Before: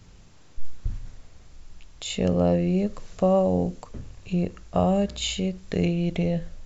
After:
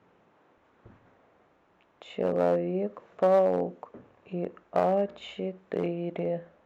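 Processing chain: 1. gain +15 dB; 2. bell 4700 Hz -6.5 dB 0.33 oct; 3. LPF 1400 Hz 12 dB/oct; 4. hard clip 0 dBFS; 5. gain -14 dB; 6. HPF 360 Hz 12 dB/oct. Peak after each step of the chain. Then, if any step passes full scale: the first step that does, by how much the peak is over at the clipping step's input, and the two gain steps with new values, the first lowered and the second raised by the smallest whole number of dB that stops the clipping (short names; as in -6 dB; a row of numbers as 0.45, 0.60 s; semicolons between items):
+5.5, +5.5, +5.0, 0.0, -14.0, -12.0 dBFS; step 1, 5.0 dB; step 1 +10 dB, step 5 -9 dB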